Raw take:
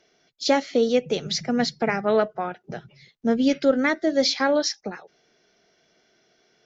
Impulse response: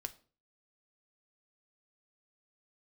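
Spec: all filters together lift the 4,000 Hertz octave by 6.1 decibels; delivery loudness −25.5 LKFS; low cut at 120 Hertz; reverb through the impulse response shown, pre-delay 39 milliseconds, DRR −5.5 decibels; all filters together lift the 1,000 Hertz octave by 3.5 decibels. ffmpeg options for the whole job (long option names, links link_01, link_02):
-filter_complex "[0:a]highpass=120,equalizer=frequency=1000:width_type=o:gain=4.5,equalizer=frequency=4000:width_type=o:gain=7,asplit=2[link_01][link_02];[1:a]atrim=start_sample=2205,adelay=39[link_03];[link_02][link_03]afir=irnorm=-1:irlink=0,volume=8dB[link_04];[link_01][link_04]amix=inputs=2:normalize=0,volume=-11.5dB"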